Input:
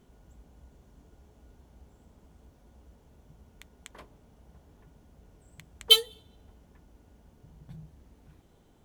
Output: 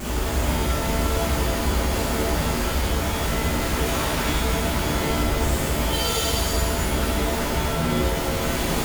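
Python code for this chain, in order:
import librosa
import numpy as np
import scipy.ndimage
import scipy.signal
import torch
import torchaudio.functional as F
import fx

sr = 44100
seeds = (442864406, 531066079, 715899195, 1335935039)

y = np.sign(x) * np.sqrt(np.mean(np.square(x)))
y = fx.rev_shimmer(y, sr, seeds[0], rt60_s=1.4, semitones=7, shimmer_db=-2, drr_db=-9.5)
y = F.gain(torch.from_numpy(y), 2.0).numpy()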